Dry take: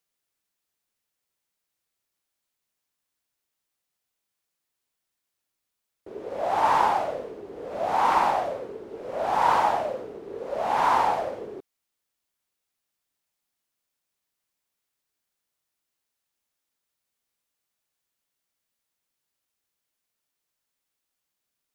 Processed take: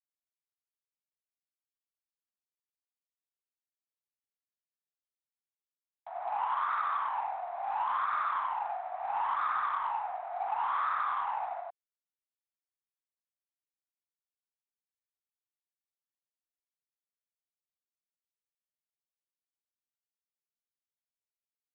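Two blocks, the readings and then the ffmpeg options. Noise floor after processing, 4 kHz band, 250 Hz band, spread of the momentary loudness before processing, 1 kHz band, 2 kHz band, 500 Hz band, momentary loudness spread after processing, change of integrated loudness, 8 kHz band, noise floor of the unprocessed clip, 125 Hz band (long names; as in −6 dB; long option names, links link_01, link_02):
below −85 dBFS, −12.5 dB, below −25 dB, 17 LU, −7.0 dB, −6.0 dB, −16.5 dB, 7 LU, −8.5 dB, can't be measured, −83 dBFS, below −25 dB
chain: -filter_complex "[0:a]aecho=1:1:40.82|96.21:0.398|0.891,highpass=frequency=390:width_type=q:width=0.5412,highpass=frequency=390:width_type=q:width=1.307,lowpass=frequency=2100:width_type=q:width=0.5176,lowpass=frequency=2100:width_type=q:width=0.7071,lowpass=frequency=2100:width_type=q:width=1.932,afreqshift=300,acrossover=split=1200[link_01][link_02];[link_01]crystalizer=i=10:c=0[link_03];[link_03][link_02]amix=inputs=2:normalize=0,acompressor=threshold=-25dB:ratio=8,asplit=2[link_04][link_05];[link_05]asoftclip=type=tanh:threshold=-29.5dB,volume=-4.5dB[link_06];[link_04][link_06]amix=inputs=2:normalize=0,volume=-6dB" -ar 8000 -c:a adpcm_g726 -b:a 32k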